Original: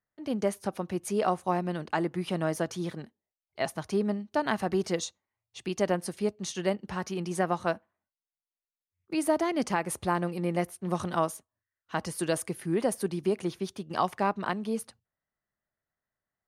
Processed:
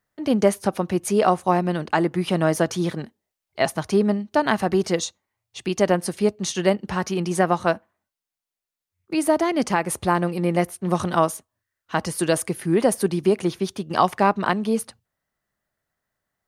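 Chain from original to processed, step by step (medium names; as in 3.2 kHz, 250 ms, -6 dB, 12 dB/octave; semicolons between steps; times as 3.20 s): gain riding 2 s; trim +8.5 dB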